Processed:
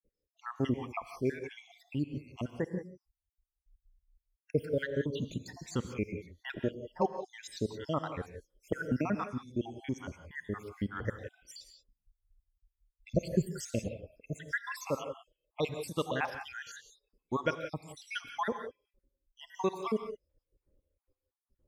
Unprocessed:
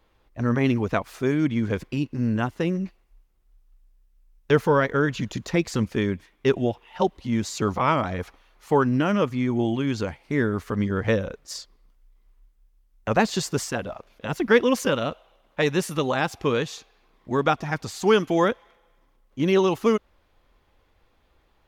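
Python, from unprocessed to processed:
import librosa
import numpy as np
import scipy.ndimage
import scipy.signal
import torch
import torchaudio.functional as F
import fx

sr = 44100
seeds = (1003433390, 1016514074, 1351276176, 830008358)

y = fx.spec_dropout(x, sr, seeds[0], share_pct=73)
y = fx.noise_reduce_blind(y, sr, reduce_db=22)
y = fx.low_shelf(y, sr, hz=360.0, db=10.0, at=(13.12, 13.92))
y = fx.rev_gated(y, sr, seeds[1], gate_ms=200, shape='rising', drr_db=8.0)
y = fx.band_squash(y, sr, depth_pct=100, at=(8.72, 9.24))
y = y * 10.0 ** (-7.0 / 20.0)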